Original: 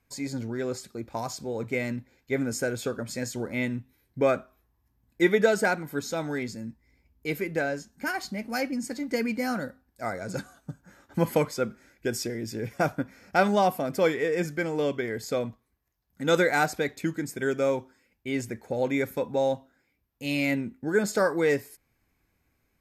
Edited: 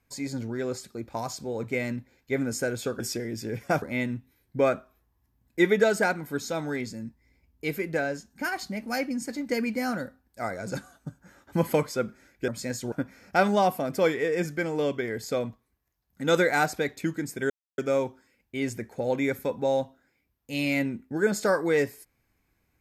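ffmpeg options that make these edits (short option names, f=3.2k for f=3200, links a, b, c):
-filter_complex "[0:a]asplit=6[a][b][c][d][e][f];[a]atrim=end=3.002[g];[b]atrim=start=12.098:end=12.922[h];[c]atrim=start=3.438:end=12.102[i];[d]atrim=start=2.998:end=3.442[j];[e]atrim=start=12.918:end=17.5,asetpts=PTS-STARTPTS,afade=t=out:st=4.578:d=0.004:c=hsin,apad=pad_dur=0.28[k];[f]atrim=start=17.5,asetpts=PTS-STARTPTS,afade=t=in:d=0.004:c=hsin[l];[g][h]acrossfade=d=0.004:c1=hsin:c2=hsin[m];[m][i]acrossfade=d=0.004:c1=hsin:c2=hsin[n];[n][j]acrossfade=d=0.004:c1=hsin:c2=hsin[o];[k][l]concat=n=2:v=0:a=1[p];[o][p]acrossfade=d=0.004:c1=hsin:c2=hsin"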